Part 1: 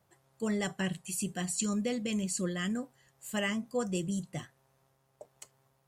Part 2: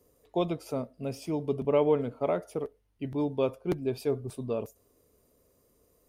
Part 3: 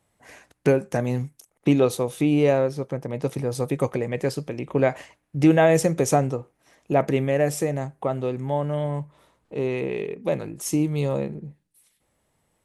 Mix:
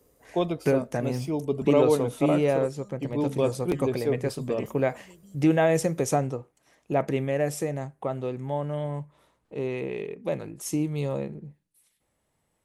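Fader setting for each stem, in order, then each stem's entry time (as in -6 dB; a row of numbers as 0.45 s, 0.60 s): -19.5 dB, +2.5 dB, -4.5 dB; 1.15 s, 0.00 s, 0.00 s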